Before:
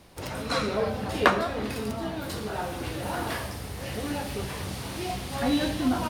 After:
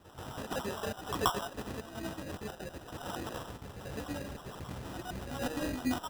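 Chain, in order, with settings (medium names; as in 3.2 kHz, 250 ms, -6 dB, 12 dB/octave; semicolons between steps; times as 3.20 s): random holes in the spectrogram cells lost 35%; reverse echo 131 ms -10 dB; sample-and-hold 20×; trim -7 dB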